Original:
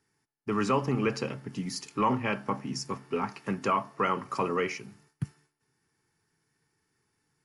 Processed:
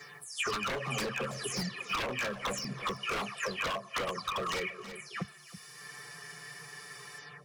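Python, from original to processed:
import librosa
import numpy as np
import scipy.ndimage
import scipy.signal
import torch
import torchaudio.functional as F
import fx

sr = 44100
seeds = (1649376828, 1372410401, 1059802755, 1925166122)

p1 = fx.spec_delay(x, sr, highs='early', ms=264)
p2 = fx.highpass(p1, sr, hz=730.0, slope=6)
p3 = fx.high_shelf(p2, sr, hz=3700.0, db=-6.0)
p4 = p3 + 0.73 * np.pad(p3, (int(1.7 * sr / 1000.0), 0))[:len(p3)]
p5 = fx.rider(p4, sr, range_db=4, speed_s=0.5)
p6 = fx.env_flanger(p5, sr, rest_ms=6.9, full_db=-27.5)
p7 = 10.0 ** (-34.5 / 20.0) * (np.abs((p6 / 10.0 ** (-34.5 / 20.0) + 3.0) % 4.0 - 2.0) - 1.0)
p8 = p7 + fx.echo_single(p7, sr, ms=324, db=-20.5, dry=0)
p9 = fx.band_squash(p8, sr, depth_pct=100)
y = p9 * librosa.db_to_amplitude(6.5)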